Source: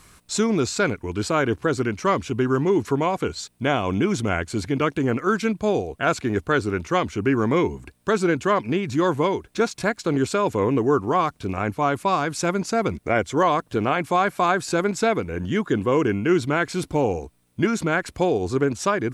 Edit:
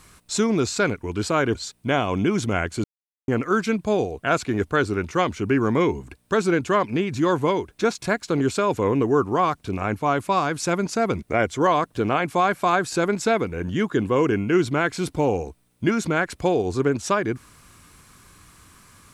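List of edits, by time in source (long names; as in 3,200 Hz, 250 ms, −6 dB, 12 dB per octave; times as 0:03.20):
0:01.55–0:03.31: remove
0:04.60–0:05.04: silence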